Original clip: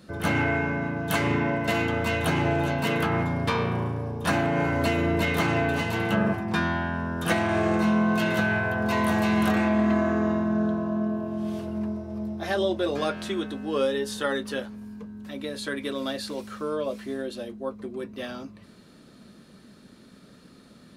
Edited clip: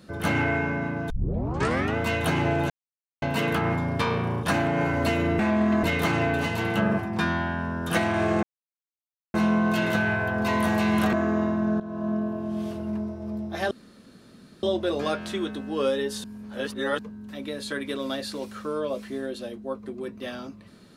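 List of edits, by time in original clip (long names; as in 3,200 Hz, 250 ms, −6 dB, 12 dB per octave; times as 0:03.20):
0:01.10: tape start 0.86 s
0:02.70: splice in silence 0.52 s
0:03.91–0:04.22: remove
0:07.78: splice in silence 0.91 s
0:09.57–0:10.01: move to 0:05.18
0:10.68–0:10.97: fade in, from −15 dB
0:12.59: splice in room tone 0.92 s
0:14.20–0:14.95: reverse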